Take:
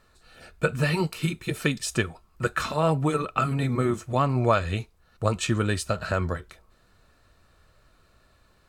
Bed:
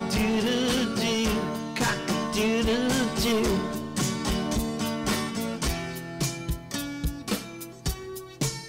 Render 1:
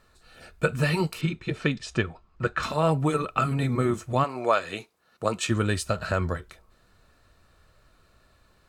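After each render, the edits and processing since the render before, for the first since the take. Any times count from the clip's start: 1.21–2.63 s: distance through air 130 m; 4.23–5.49 s: high-pass 480 Hz -> 160 Hz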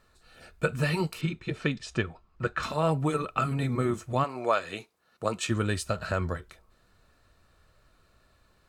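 trim -3 dB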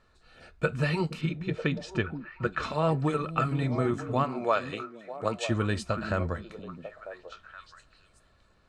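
distance through air 71 m; repeats whose band climbs or falls 473 ms, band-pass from 220 Hz, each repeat 1.4 oct, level -5.5 dB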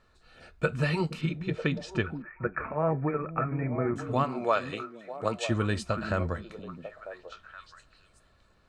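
2.22–3.96 s: rippled Chebyshev low-pass 2.4 kHz, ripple 3 dB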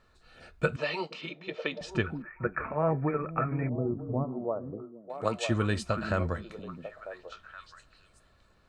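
0.76–1.81 s: cabinet simulation 450–5800 Hz, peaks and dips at 610 Hz +4 dB, 1.5 kHz -7 dB, 3.2 kHz +3 dB; 3.69–5.10 s: Gaussian low-pass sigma 12 samples

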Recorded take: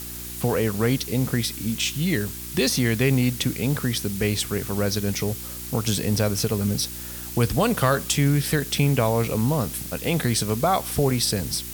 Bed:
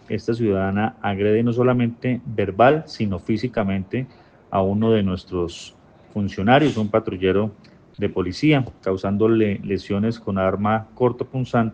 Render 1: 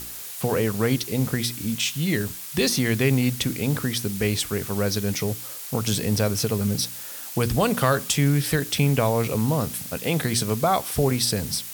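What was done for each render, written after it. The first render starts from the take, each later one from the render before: de-hum 60 Hz, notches 6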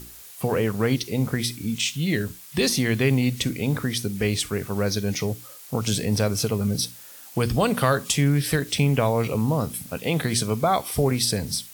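noise print and reduce 8 dB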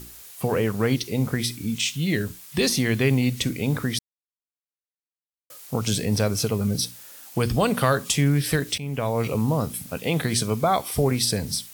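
3.99–5.50 s: mute; 8.78–9.27 s: fade in, from -17 dB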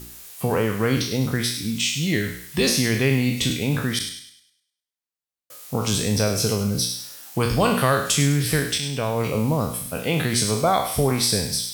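spectral sustain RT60 0.54 s; feedback echo behind a high-pass 102 ms, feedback 39%, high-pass 1.7 kHz, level -9 dB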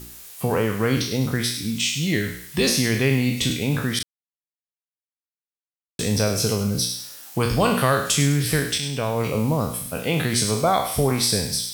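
4.03–5.99 s: mute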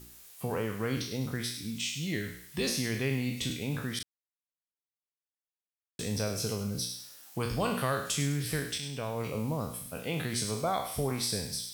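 trim -11 dB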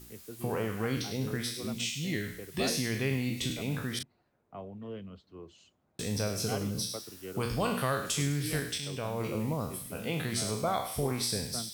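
add bed -24 dB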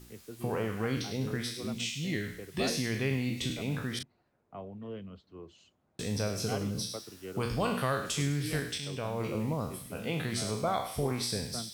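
treble shelf 9.3 kHz -8.5 dB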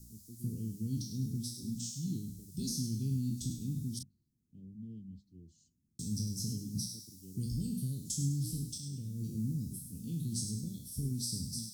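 inverse Chebyshev band-stop 810–1700 Hz, stop band 80 dB; hum notches 50/100/150/200 Hz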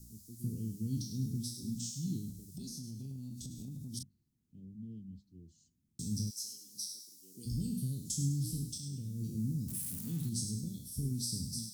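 2.30–3.94 s: compression, threshold -41 dBFS; 6.29–7.45 s: high-pass 1.4 kHz -> 400 Hz; 9.68–10.29 s: zero-crossing glitches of -37 dBFS

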